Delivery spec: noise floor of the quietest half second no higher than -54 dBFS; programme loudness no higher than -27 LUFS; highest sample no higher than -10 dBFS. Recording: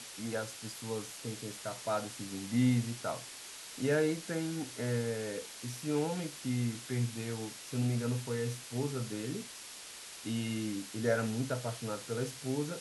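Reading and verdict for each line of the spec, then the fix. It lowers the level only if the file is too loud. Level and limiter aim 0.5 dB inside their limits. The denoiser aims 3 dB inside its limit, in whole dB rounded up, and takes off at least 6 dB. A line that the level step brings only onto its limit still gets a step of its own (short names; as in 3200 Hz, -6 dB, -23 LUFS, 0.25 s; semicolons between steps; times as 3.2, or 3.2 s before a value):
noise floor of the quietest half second -48 dBFS: fail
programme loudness -36.0 LUFS: OK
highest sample -18.0 dBFS: OK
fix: denoiser 9 dB, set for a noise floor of -48 dBFS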